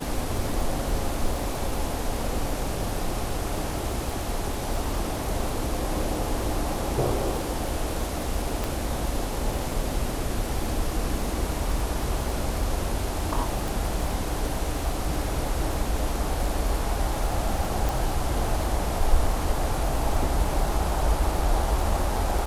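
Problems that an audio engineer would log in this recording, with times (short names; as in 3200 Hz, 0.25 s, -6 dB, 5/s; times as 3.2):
crackle 76/s -32 dBFS
8.64 pop
13.68 pop
17.89 pop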